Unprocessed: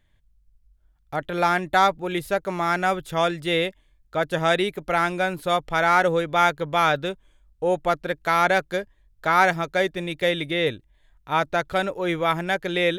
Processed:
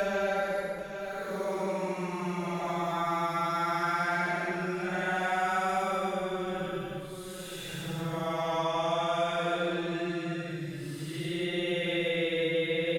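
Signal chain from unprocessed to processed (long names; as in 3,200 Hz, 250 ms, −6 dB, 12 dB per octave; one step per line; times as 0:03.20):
extreme stretch with random phases 10×, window 0.10 s, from 0:02.32
single-tap delay 787 ms −17 dB
multiband upward and downward compressor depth 70%
level −8.5 dB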